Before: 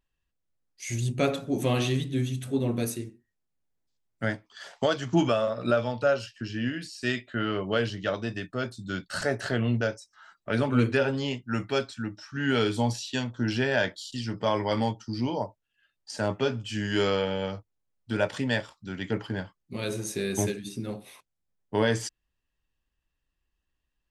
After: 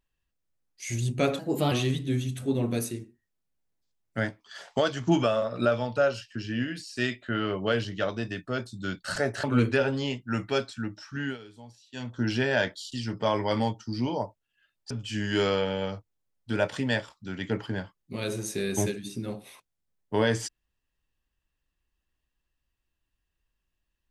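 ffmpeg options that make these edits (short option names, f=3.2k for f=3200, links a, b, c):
-filter_complex "[0:a]asplit=7[a][b][c][d][e][f][g];[a]atrim=end=1.394[h];[b]atrim=start=1.39:end=1.77,asetpts=PTS-STARTPTS,asetrate=51597,aresample=44100,atrim=end_sample=14323,asetpts=PTS-STARTPTS[i];[c]atrim=start=1.766:end=9.492[j];[d]atrim=start=10.638:end=12.58,asetpts=PTS-STARTPTS,afade=t=out:st=1.632:d=0.31:c=qsin:silence=0.0794328[k];[e]atrim=start=12.58:end=13.12,asetpts=PTS-STARTPTS,volume=-22dB[l];[f]atrim=start=13.12:end=16.112,asetpts=PTS-STARTPTS,afade=t=in:d=0.31:c=qsin:silence=0.0794328[m];[g]atrim=start=16.508[n];[h][i]acrossfade=d=0.004:c1=hsin:c2=hsin[o];[o][j]acrossfade=d=0.004:c1=hsin:c2=hsin[p];[k][l][m]concat=n=3:v=0:a=1[q];[p][q]acrossfade=d=0.004:c1=hsin:c2=hsin[r];[r][n]acrossfade=d=0.004:c1=hsin:c2=hsin"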